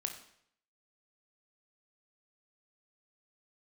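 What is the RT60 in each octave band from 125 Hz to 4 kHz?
0.75, 0.65, 0.70, 0.65, 0.65, 0.60 seconds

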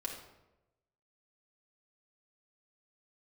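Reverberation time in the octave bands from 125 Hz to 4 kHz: 1.2, 1.0, 1.1, 0.90, 0.75, 0.60 seconds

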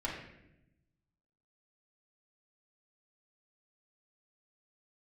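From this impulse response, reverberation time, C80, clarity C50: 0.85 s, 6.0 dB, 3.0 dB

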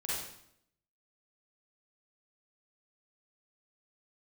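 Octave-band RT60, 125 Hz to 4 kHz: 0.80, 0.85, 0.75, 0.70, 0.65, 0.65 seconds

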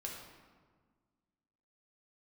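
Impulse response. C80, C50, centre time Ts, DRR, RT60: 4.5 dB, 2.5 dB, 58 ms, −2.0 dB, 1.6 s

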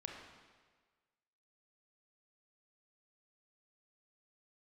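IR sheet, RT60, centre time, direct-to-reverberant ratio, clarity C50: 1.5 s, 60 ms, 0.5 dB, 2.5 dB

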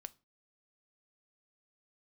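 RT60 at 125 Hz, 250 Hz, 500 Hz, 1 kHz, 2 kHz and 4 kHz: 0.40, 0.40, 0.35, 0.30, 0.30, 0.25 seconds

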